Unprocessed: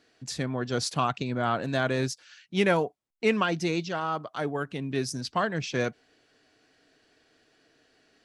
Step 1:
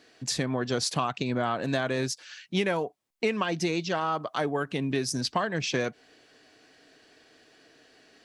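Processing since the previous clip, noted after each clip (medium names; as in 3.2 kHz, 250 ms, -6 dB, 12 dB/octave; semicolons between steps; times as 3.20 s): bass shelf 120 Hz -7.5 dB; band-stop 1.4 kHz, Q 18; compression 6:1, threshold -31 dBFS, peak gain reduction 12 dB; trim +7 dB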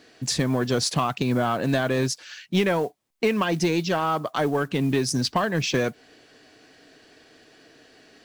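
bass shelf 340 Hz +4 dB; modulation noise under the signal 29 dB; in parallel at -4.5 dB: hard clipper -23 dBFS, distortion -11 dB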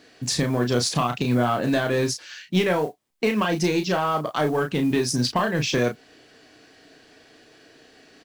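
doubling 33 ms -6 dB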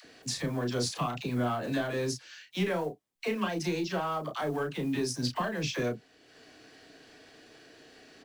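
upward compressor, threshold -37 dBFS; phase dispersion lows, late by 53 ms, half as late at 570 Hz; trim -9 dB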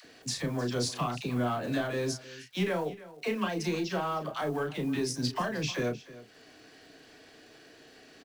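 crackle 410 per s -57 dBFS; delay 309 ms -17.5 dB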